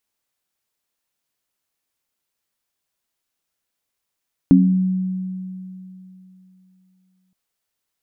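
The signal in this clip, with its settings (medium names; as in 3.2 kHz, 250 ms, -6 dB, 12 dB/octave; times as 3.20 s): sine partials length 2.82 s, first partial 186 Hz, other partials 269 Hz, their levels 4.5 dB, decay 3.13 s, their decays 0.44 s, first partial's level -10 dB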